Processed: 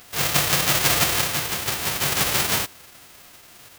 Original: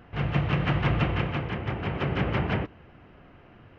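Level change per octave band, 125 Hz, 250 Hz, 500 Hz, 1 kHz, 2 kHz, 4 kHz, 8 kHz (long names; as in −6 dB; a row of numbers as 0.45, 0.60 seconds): −5.5 dB, −3.5 dB, +1.5 dB, +5.5 dB, +8.0 dB, +16.5 dB, can't be measured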